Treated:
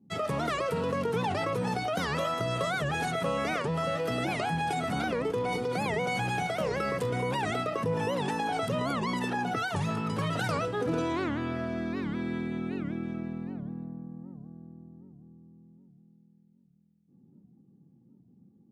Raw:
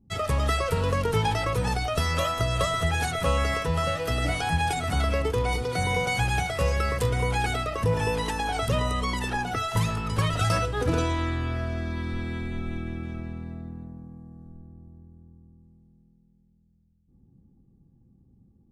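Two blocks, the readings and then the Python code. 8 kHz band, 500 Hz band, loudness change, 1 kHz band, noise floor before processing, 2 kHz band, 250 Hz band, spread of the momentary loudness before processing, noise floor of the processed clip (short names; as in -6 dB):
-8.5 dB, -1.5 dB, -4.0 dB, -3.0 dB, -62 dBFS, -3.5 dB, +0.5 dB, 10 LU, -63 dBFS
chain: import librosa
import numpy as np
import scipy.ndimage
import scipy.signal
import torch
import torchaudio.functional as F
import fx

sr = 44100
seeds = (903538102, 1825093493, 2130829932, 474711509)

p1 = scipy.signal.sosfilt(scipy.signal.butter(4, 160.0, 'highpass', fs=sr, output='sos'), x)
p2 = fx.tilt_eq(p1, sr, slope=-2.0)
p3 = fx.over_compress(p2, sr, threshold_db=-29.0, ratio=-1.0)
p4 = p2 + (p3 * 10.0 ** (-1.0 / 20.0))
p5 = fx.record_warp(p4, sr, rpm=78.0, depth_cents=250.0)
y = p5 * 10.0 ** (-7.5 / 20.0)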